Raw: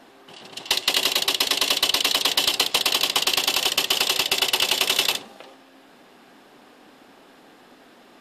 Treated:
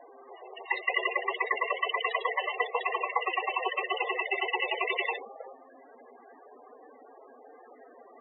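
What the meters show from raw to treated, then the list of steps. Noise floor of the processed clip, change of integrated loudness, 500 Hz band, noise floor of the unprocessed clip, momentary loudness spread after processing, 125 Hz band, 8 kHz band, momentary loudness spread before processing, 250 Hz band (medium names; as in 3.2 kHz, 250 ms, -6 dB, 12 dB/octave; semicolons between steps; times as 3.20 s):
-54 dBFS, -10.0 dB, -1.5 dB, -52 dBFS, 15 LU, under -40 dB, under -40 dB, 4 LU, -10.0 dB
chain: hum 50 Hz, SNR 21 dB; cabinet simulation 370–3100 Hz, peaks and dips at 460 Hz +7 dB, 710 Hz +3 dB, 1.1 kHz +4 dB, 2 kHz +7 dB, 3.1 kHz -8 dB; loudest bins only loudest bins 16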